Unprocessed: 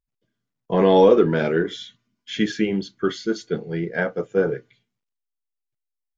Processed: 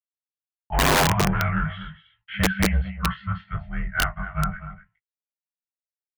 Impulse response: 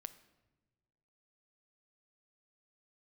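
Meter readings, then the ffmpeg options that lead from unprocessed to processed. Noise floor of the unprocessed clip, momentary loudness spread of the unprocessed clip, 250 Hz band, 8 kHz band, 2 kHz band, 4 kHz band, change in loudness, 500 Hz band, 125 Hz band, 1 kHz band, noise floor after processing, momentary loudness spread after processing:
−83 dBFS, 13 LU, −5.0 dB, can't be measured, +4.0 dB, +3.5 dB, −3.0 dB, −13.0 dB, +4.5 dB, +1.5 dB, below −85 dBFS, 17 LU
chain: -af "afftfilt=real='re*(1-between(b*sr/4096,330,740))':imag='im*(1-between(b*sr/4096,330,740))':win_size=4096:overlap=0.75,agate=range=-59dB:threshold=-50dB:ratio=16:detection=peak,adynamicequalizer=threshold=0.00891:dfrequency=160:dqfactor=6:tfrequency=160:tqfactor=6:attack=5:release=100:ratio=0.375:range=2.5:mode=boostabove:tftype=bell,asoftclip=type=tanh:threshold=-16.5dB,highpass=frequency=200:width_type=q:width=0.5412,highpass=frequency=200:width_type=q:width=1.307,lowpass=frequency=2600:width_type=q:width=0.5176,lowpass=frequency=2600:width_type=q:width=0.7071,lowpass=frequency=2600:width_type=q:width=1.932,afreqshift=-130,flanger=delay=15.5:depth=5.2:speed=0.36,aecho=1:1:245:0.224,aeval=exprs='(mod(10.6*val(0)+1,2)-1)/10.6':channel_layout=same,volume=8dB"

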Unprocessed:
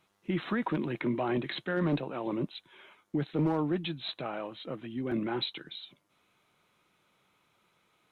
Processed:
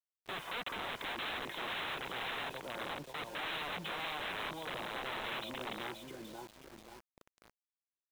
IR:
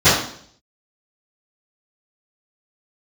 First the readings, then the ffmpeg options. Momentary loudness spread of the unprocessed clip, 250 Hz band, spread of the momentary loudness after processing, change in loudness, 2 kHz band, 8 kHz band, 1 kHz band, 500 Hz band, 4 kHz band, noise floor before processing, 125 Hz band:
11 LU, −17.5 dB, 11 LU, −6.5 dB, +2.0 dB, can't be measured, −1.0 dB, −9.5 dB, 0.0 dB, −72 dBFS, −17.5 dB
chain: -filter_complex "[0:a]firequalizer=gain_entry='entry(110,0);entry(200,3);entry(290,3);entry(750,6);entry(1400,-7)':delay=0.05:min_phase=1,acrossover=split=280|680[link_01][link_02][link_03];[link_02]acompressor=threshold=-44dB:ratio=16[link_04];[link_01][link_04][link_03]amix=inputs=3:normalize=0,asplit=2[link_05][link_06];[link_06]adelay=533,lowpass=frequency=2800:poles=1,volume=-4dB,asplit=2[link_07][link_08];[link_08]adelay=533,lowpass=frequency=2800:poles=1,volume=0.44,asplit=2[link_09][link_10];[link_10]adelay=533,lowpass=frequency=2800:poles=1,volume=0.44,asplit=2[link_11][link_12];[link_12]adelay=533,lowpass=frequency=2800:poles=1,volume=0.44,asplit=2[link_13][link_14];[link_14]adelay=533,lowpass=frequency=2800:poles=1,volume=0.44,asplit=2[link_15][link_16];[link_16]adelay=533,lowpass=frequency=2800:poles=1,volume=0.44[link_17];[link_05][link_07][link_09][link_11][link_13][link_15][link_17]amix=inputs=7:normalize=0,aeval=exprs='val(0)+0.001*(sin(2*PI*50*n/s)+sin(2*PI*2*50*n/s)/2+sin(2*PI*3*50*n/s)/3+sin(2*PI*4*50*n/s)/4+sin(2*PI*5*50*n/s)/5)':channel_layout=same,aecho=1:1:2:0.34,aresample=8000,aeval=exprs='(mod(39.8*val(0)+1,2)-1)/39.8':channel_layout=same,aresample=44100,lowshelf=frequency=300:gain=-11,acrusher=bits=8:mix=0:aa=0.000001,alimiter=level_in=8dB:limit=-24dB:level=0:latency=1:release=28,volume=-8dB,volume=1dB"

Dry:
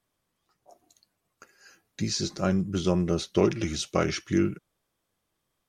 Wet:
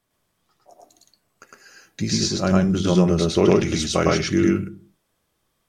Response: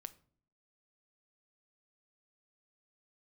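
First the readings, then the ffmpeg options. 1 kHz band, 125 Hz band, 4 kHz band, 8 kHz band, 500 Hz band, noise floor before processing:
+7.5 dB, +8.0 dB, +7.5 dB, +7.5 dB, +7.5 dB, −80 dBFS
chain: -filter_complex "[0:a]asplit=2[link_01][link_02];[1:a]atrim=start_sample=2205,asetrate=61740,aresample=44100,adelay=107[link_03];[link_02][link_03]afir=irnorm=-1:irlink=0,volume=9dB[link_04];[link_01][link_04]amix=inputs=2:normalize=0,volume=4dB"

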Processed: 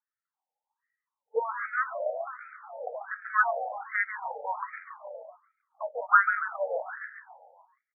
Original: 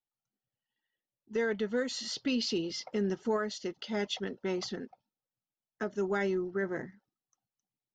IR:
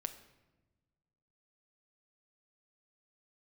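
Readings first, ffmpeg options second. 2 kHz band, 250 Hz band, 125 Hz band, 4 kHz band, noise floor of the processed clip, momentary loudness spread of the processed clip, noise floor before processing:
+11.0 dB, below −40 dB, below −40 dB, below −40 dB, below −85 dBFS, 21 LU, below −85 dBFS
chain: -filter_complex "[0:a]afftfilt=real='re*pow(10,12/40*sin(2*PI*(0.77*log(max(b,1)*sr/1024/100)/log(2)-(0.26)*(pts-256)/sr)))':imag='im*pow(10,12/40*sin(2*PI*(0.77*log(max(b,1)*sr/1024/100)/log(2)-(0.26)*(pts-256)/sr)))':win_size=1024:overlap=0.75,highshelf=frequency=2600:width_type=q:width=1.5:gain=-9,asplit=2[link_01][link_02];[link_02]asplit=7[link_03][link_04][link_05][link_06][link_07][link_08][link_09];[link_03]adelay=139,afreqshift=57,volume=-7dB[link_10];[link_04]adelay=278,afreqshift=114,volume=-12.2dB[link_11];[link_05]adelay=417,afreqshift=171,volume=-17.4dB[link_12];[link_06]adelay=556,afreqshift=228,volume=-22.6dB[link_13];[link_07]adelay=695,afreqshift=285,volume=-27.8dB[link_14];[link_08]adelay=834,afreqshift=342,volume=-33dB[link_15];[link_09]adelay=973,afreqshift=399,volume=-38.2dB[link_16];[link_10][link_11][link_12][link_13][link_14][link_15][link_16]amix=inputs=7:normalize=0[link_17];[link_01][link_17]amix=inputs=2:normalize=0,adynamicsmooth=sensitivity=3:basefreq=1400,equalizer=frequency=1200:width=1.1:gain=11.5,asplit=2[link_18][link_19];[link_19]adelay=174,lowpass=frequency=1500:poles=1,volume=-13dB,asplit=2[link_20][link_21];[link_21]adelay=174,lowpass=frequency=1500:poles=1,volume=0.32,asplit=2[link_22][link_23];[link_23]adelay=174,lowpass=frequency=1500:poles=1,volume=0.32[link_24];[link_20][link_22][link_24]amix=inputs=3:normalize=0[link_25];[link_18][link_25]amix=inputs=2:normalize=0,afftfilt=real='re*between(b*sr/1024,620*pow(1800/620,0.5+0.5*sin(2*PI*1.3*pts/sr))/1.41,620*pow(1800/620,0.5+0.5*sin(2*PI*1.3*pts/sr))*1.41)':imag='im*between(b*sr/1024,620*pow(1800/620,0.5+0.5*sin(2*PI*1.3*pts/sr))/1.41,620*pow(1800/620,0.5+0.5*sin(2*PI*1.3*pts/sr))*1.41)':win_size=1024:overlap=0.75,volume=4.5dB"

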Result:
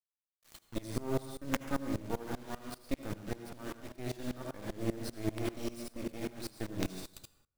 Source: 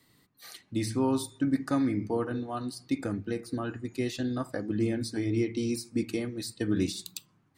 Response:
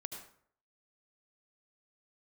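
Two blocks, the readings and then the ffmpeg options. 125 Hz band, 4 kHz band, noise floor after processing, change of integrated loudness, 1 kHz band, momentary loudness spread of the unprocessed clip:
−7.0 dB, −7.0 dB, below −85 dBFS, −8.5 dB, −5.5 dB, 8 LU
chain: -filter_complex "[0:a]acrusher=bits=4:dc=4:mix=0:aa=0.000001[link_01];[1:a]atrim=start_sample=2205[link_02];[link_01][link_02]afir=irnorm=-1:irlink=0,aeval=exprs='val(0)*pow(10,-21*if(lt(mod(-5.1*n/s,1),2*abs(-5.1)/1000),1-mod(-5.1*n/s,1)/(2*abs(-5.1)/1000),(mod(-5.1*n/s,1)-2*abs(-5.1)/1000)/(1-2*abs(-5.1)/1000))/20)':channel_layout=same,volume=3.5dB"

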